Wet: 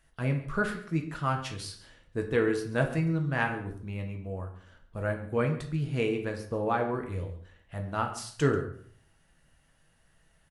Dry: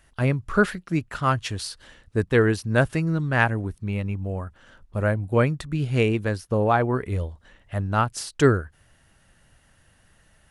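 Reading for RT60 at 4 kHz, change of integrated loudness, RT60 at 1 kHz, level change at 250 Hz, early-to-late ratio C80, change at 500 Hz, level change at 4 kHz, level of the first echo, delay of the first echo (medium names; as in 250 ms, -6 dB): 0.45 s, -7.0 dB, 0.50 s, -6.5 dB, 11.5 dB, -6.5 dB, -7.5 dB, -17.5 dB, 138 ms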